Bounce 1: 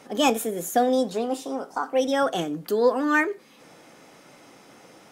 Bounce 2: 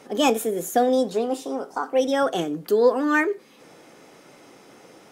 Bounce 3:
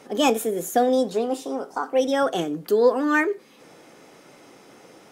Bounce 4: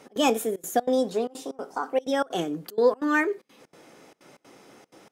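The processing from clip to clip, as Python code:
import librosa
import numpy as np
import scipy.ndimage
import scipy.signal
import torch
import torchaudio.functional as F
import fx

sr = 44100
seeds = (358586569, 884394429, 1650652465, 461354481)

y1 = fx.peak_eq(x, sr, hz=400.0, db=5.0, octaves=0.61)
y2 = y1
y3 = fx.step_gate(y2, sr, bpm=189, pattern='x.xxxxx.x', floor_db=-24.0, edge_ms=4.5)
y3 = y3 * librosa.db_to_amplitude(-2.5)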